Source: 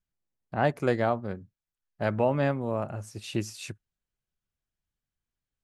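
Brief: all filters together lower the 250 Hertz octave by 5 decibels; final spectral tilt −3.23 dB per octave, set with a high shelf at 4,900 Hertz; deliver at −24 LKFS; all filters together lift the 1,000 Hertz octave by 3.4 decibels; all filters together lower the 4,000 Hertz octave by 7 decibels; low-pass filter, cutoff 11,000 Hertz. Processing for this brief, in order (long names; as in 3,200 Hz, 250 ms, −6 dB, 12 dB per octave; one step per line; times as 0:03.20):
low-pass filter 11,000 Hz
parametric band 250 Hz −7 dB
parametric band 1,000 Hz +6 dB
parametric band 4,000 Hz −6 dB
high-shelf EQ 4,900 Hz −9 dB
level +5 dB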